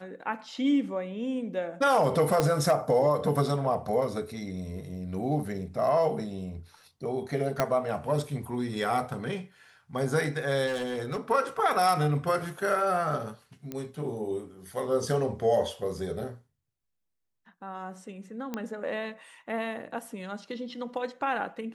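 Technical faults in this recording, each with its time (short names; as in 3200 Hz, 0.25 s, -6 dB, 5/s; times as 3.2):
2.4 pop -10 dBFS
7.6 pop -10 dBFS
10.66–11.19 clipped -26.5 dBFS
13.72 pop -21 dBFS
18.54 pop -19 dBFS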